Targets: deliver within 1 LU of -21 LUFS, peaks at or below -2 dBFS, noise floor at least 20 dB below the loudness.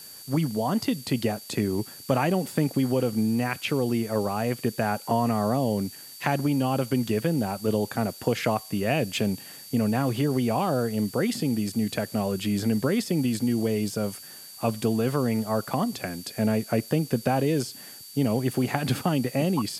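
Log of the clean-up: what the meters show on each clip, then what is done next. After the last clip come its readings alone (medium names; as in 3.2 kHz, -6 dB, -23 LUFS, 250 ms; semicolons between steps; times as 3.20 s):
steady tone 4.6 kHz; tone level -46 dBFS; noise floor -44 dBFS; noise floor target -47 dBFS; loudness -26.5 LUFS; peak level -6.0 dBFS; loudness target -21.0 LUFS
-> band-stop 4.6 kHz, Q 30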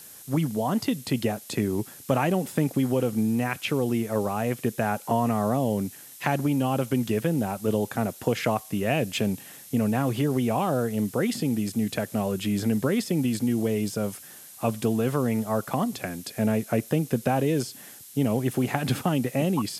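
steady tone not found; noise floor -46 dBFS; noise floor target -47 dBFS
-> noise print and reduce 6 dB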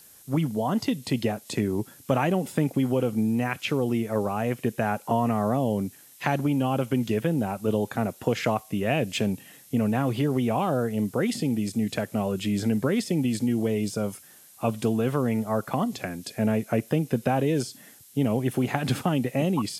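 noise floor -52 dBFS; loudness -26.5 LUFS; peak level -6.0 dBFS; loudness target -21.0 LUFS
-> trim +5.5 dB; peak limiter -2 dBFS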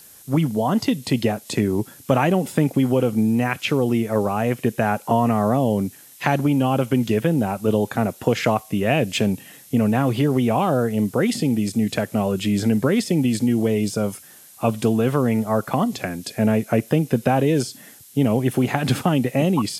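loudness -21.0 LUFS; peak level -2.0 dBFS; noise floor -46 dBFS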